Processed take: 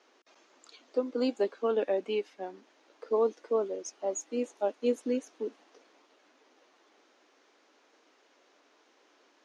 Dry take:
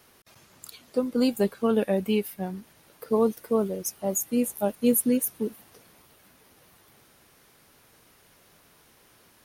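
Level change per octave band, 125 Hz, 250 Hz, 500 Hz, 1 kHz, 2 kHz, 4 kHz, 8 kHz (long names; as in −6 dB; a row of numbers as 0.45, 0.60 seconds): below −15 dB, −10.5 dB, −3.0 dB, −3.5 dB, −5.5 dB, −6.5 dB, −12.5 dB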